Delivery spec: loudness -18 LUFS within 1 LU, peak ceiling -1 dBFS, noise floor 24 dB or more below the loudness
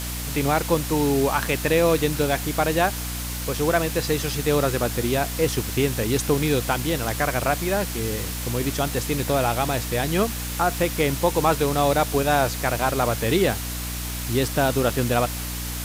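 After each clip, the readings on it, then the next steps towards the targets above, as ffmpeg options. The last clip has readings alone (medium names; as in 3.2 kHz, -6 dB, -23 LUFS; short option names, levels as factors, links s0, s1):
hum 60 Hz; highest harmonic 300 Hz; hum level -29 dBFS; noise floor -30 dBFS; noise floor target -47 dBFS; loudness -23.0 LUFS; peak level -6.5 dBFS; loudness target -18.0 LUFS
-> -af "bandreject=f=60:t=h:w=4,bandreject=f=120:t=h:w=4,bandreject=f=180:t=h:w=4,bandreject=f=240:t=h:w=4,bandreject=f=300:t=h:w=4"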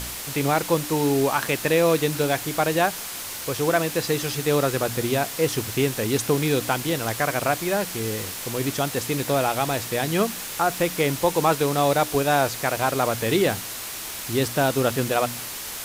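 hum not found; noise floor -34 dBFS; noise floor target -48 dBFS
-> -af "afftdn=nr=14:nf=-34"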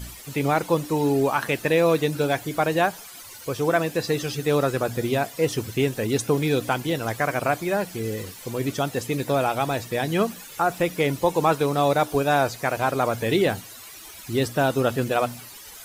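noise floor -42 dBFS; noise floor target -48 dBFS
-> -af "afftdn=nr=6:nf=-42"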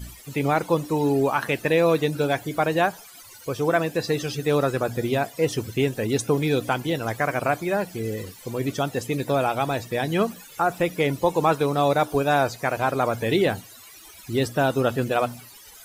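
noise floor -46 dBFS; noise floor target -48 dBFS
-> -af "afftdn=nr=6:nf=-46"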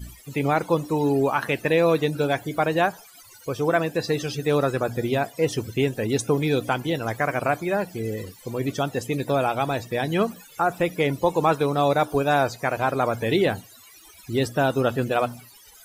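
noise floor -49 dBFS; loudness -24.0 LUFS; peak level -7.5 dBFS; loudness target -18.0 LUFS
-> -af "volume=2"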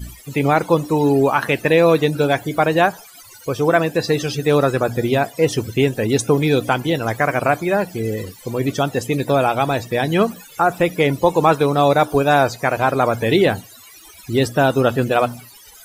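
loudness -18.0 LUFS; peak level -1.5 dBFS; noise floor -43 dBFS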